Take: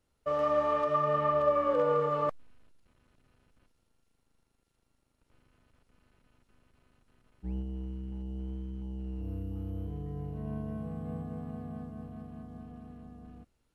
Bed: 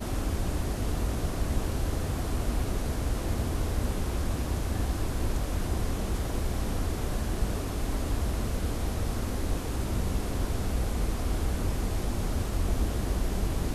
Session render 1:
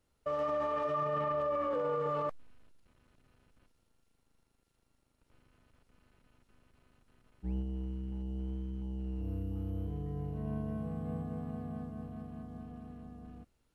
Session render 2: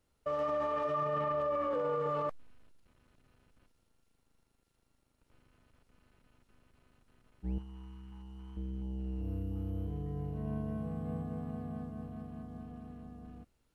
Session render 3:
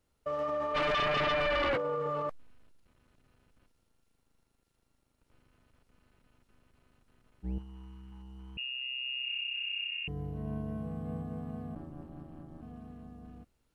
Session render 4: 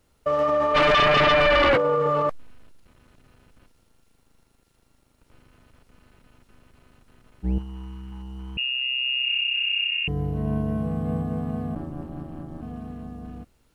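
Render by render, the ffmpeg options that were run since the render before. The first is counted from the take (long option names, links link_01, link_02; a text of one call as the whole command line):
ffmpeg -i in.wav -af "alimiter=level_in=2.5dB:limit=-24dB:level=0:latency=1:release=13,volume=-2.5dB" out.wav
ffmpeg -i in.wav -filter_complex "[0:a]asettb=1/sr,asplit=3[link_01][link_02][link_03];[link_01]atrim=end=7.584[link_04];[link_02]atrim=start=7.58:end=8.57,asetpts=PTS-STARTPTS,afade=type=in:duration=0.004:curve=qsin,afade=type=out:start_time=0.986:duration=0.004:curve=qsin,lowshelf=frequency=760:width_type=q:width=3:gain=-10[link_05];[link_03]atrim=start=8.566[link_06];[link_04][link_05]acrossfade=duration=0.004:curve1=hsin:curve2=qsin[link_07];[link_07][link_06]acrossfade=duration=0.004:curve1=qsin:curve2=hsin" out.wav
ffmpeg -i in.wav -filter_complex "[0:a]asplit=3[link_01][link_02][link_03];[link_01]afade=type=out:start_time=0.74:duration=0.02[link_04];[link_02]aeval=exprs='0.0501*sin(PI/2*2.24*val(0)/0.0501)':channel_layout=same,afade=type=in:start_time=0.74:duration=0.02,afade=type=out:start_time=1.76:duration=0.02[link_05];[link_03]afade=type=in:start_time=1.76:duration=0.02[link_06];[link_04][link_05][link_06]amix=inputs=3:normalize=0,asettb=1/sr,asplit=3[link_07][link_08][link_09];[link_07]atrim=end=8.574[link_10];[link_08]atrim=start=8.57:end=10.08,asetpts=PTS-STARTPTS,afade=type=in:duration=0.004:curve=qsin,afade=type=out:start_time=1.506:duration=0.004:curve=qsin,lowpass=frequency=2500:width_type=q:width=0.5098,lowpass=frequency=2500:width_type=q:width=0.6013,lowpass=frequency=2500:width_type=q:width=0.9,lowpass=frequency=2500:width_type=q:width=2.563,afreqshift=-2900[link_11];[link_09]atrim=start=10.076[link_12];[link_10][link_11]acrossfade=duration=0.004:curve1=hsin:curve2=qsin[link_13];[link_13][link_12]acrossfade=duration=0.004:curve1=qsin:curve2=hsin,asplit=3[link_14][link_15][link_16];[link_14]afade=type=out:start_time=11.74:duration=0.02[link_17];[link_15]aeval=exprs='val(0)*sin(2*PI*78*n/s)':channel_layout=same,afade=type=in:start_time=11.74:duration=0.02,afade=type=out:start_time=12.61:duration=0.02[link_18];[link_16]afade=type=in:start_time=12.61:duration=0.02[link_19];[link_17][link_18][link_19]amix=inputs=3:normalize=0" out.wav
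ffmpeg -i in.wav -af "volume=11.5dB" out.wav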